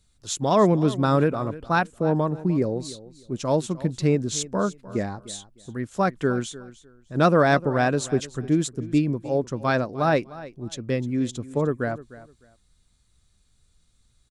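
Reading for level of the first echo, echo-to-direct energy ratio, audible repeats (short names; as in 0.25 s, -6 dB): -17.5 dB, -17.5 dB, 2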